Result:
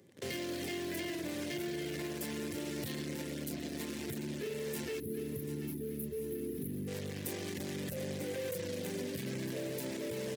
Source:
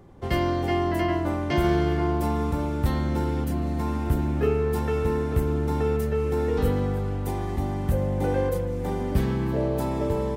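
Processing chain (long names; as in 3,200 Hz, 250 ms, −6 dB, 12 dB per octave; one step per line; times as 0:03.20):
in parallel at −10.5 dB: fuzz pedal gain 42 dB, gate −42 dBFS
on the sum: gain on a spectral selection 0:05.00–0:06.88, 440–9,600 Hz −20 dB
on a send: repeating echo 738 ms, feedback 43%, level −13.5 dB
on the sum: reverb reduction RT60 0.54 s
downward compressor 3 to 1, threshold −24 dBFS, peak gain reduction 8 dB
Bessel high-pass filter 170 Hz, order 8
flat-topped bell 1,000 Hz −12.5 dB 1.2 octaves
brickwall limiter −22.5 dBFS, peak gain reduction 7 dB
high-shelf EQ 2,700 Hz +9 dB
level −8.5 dB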